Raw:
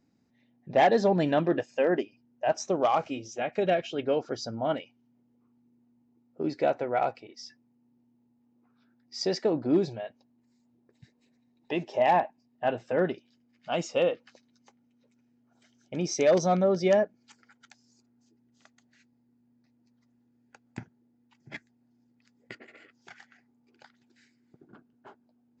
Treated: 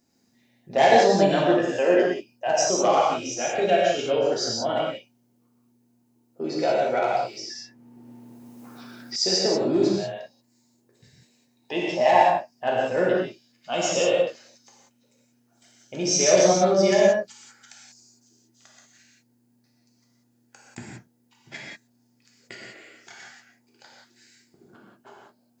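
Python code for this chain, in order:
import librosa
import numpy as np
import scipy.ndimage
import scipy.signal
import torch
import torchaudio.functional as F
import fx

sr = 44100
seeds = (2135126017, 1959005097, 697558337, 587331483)

y = fx.bass_treble(x, sr, bass_db=-5, treble_db=12)
y = fx.rev_gated(y, sr, seeds[0], gate_ms=210, shape='flat', drr_db=-4.5)
y = fx.band_squash(y, sr, depth_pct=70, at=(6.69, 9.16))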